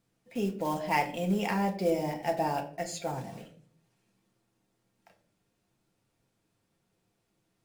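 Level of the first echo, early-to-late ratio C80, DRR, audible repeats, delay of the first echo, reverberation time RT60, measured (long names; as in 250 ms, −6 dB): no echo audible, 15.0 dB, 2.5 dB, no echo audible, no echo audible, 0.55 s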